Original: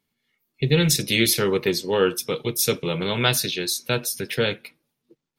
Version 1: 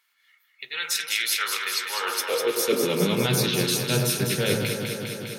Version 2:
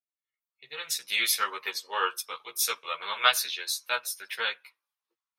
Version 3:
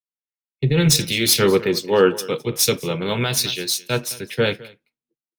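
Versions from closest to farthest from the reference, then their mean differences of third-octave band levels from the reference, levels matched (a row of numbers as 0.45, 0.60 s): 3, 2, 1; 4.5, 10.0, 15.0 dB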